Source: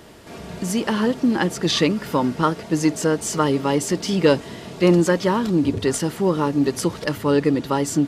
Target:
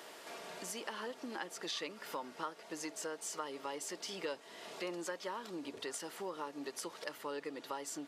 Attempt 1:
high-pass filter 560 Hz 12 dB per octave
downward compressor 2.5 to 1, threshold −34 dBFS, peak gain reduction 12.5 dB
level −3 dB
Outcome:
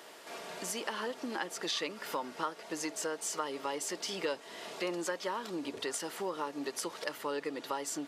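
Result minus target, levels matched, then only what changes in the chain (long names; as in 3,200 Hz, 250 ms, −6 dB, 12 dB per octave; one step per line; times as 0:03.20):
downward compressor: peak gain reduction −5.5 dB
change: downward compressor 2.5 to 1, threshold −43.5 dBFS, peak gain reduction 18.5 dB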